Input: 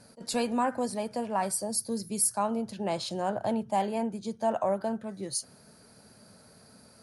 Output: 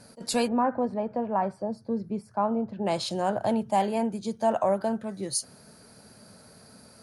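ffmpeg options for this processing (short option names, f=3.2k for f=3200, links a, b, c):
-filter_complex "[0:a]asplit=3[a][b][c];[a]afade=t=out:st=0.47:d=0.02[d];[b]lowpass=1.3k,afade=t=in:st=0.47:d=0.02,afade=t=out:st=2.85:d=0.02[e];[c]afade=t=in:st=2.85:d=0.02[f];[d][e][f]amix=inputs=3:normalize=0,volume=3.5dB"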